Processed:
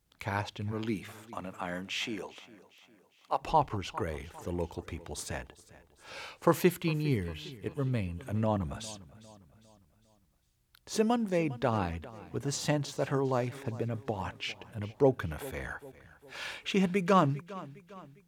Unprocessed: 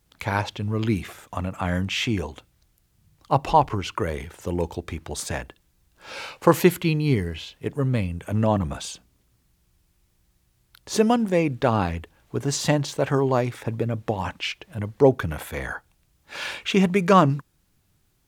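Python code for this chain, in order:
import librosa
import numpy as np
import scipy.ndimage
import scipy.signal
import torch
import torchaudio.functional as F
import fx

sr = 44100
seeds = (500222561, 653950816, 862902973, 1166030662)

y = fx.highpass(x, sr, hz=fx.line((0.71, 150.0), (3.4, 520.0)), slope=12, at=(0.71, 3.4), fade=0.02)
y = fx.echo_feedback(y, sr, ms=404, feedback_pct=46, wet_db=-18.5)
y = y * 10.0 ** (-8.5 / 20.0)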